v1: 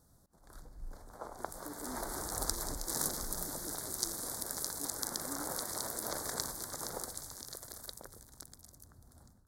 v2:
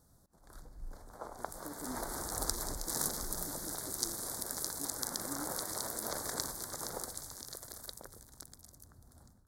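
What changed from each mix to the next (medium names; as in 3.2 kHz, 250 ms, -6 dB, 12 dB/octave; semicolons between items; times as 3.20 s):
speech: remove Chebyshev high-pass 230 Hz, order 5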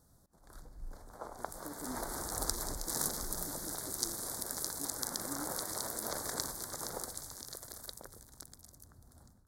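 no change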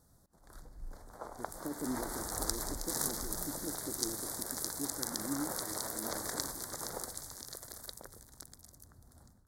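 speech +7.5 dB; background: add peaking EQ 1.9 kHz +3 dB 0.23 oct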